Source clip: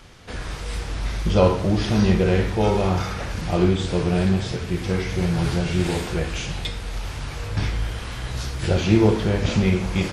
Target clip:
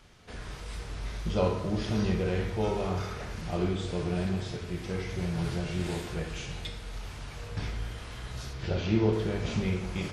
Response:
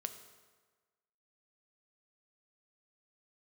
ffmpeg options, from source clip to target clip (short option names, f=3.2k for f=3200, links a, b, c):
-filter_complex "[0:a]asettb=1/sr,asplit=3[a][b][c];[a]atrim=end=8.534[d];[b]atrim=start=8.53:end=9.13,asetpts=PTS-STARTPTS,afade=t=in:d=0.004:c=qsin,afade=t=out:st=0.596:d=0.004:c=qsin,lowpass=f=5.7k:w=0.5412,lowpass=f=5.7k:w=1.3066[e];[c]atrim=start=9.126[f];[d][e]acrossfade=d=0.004:c1=hsin:c2=qsin[g];[g][f]acrossfade=d=0.004:c1=qsin:c2=hsin[h];[1:a]atrim=start_sample=2205[i];[h][i]afir=irnorm=-1:irlink=0,volume=-8dB"